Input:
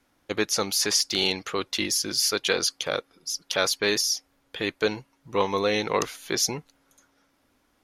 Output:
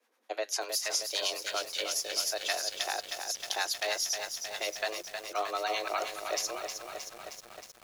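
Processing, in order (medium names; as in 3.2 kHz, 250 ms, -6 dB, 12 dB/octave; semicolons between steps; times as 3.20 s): bass shelf 220 Hz -5 dB; feedback comb 100 Hz, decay 0.28 s, harmonics all, mix 30%; harmonic tremolo 9.8 Hz, depth 70%, crossover 560 Hz; frequency shift +220 Hz; compression 2:1, threshold -30 dBFS, peak gain reduction 5 dB; bit-crushed delay 313 ms, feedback 80%, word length 8-bit, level -6.5 dB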